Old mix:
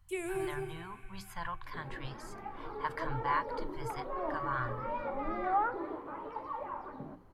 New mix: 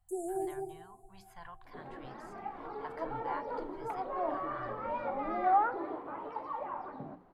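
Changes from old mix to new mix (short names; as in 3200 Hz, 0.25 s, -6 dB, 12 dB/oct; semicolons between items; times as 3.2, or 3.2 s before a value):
speech -11.0 dB; first sound: add brick-wall FIR band-stop 930–6200 Hz; master: add bell 720 Hz +8.5 dB 0.24 oct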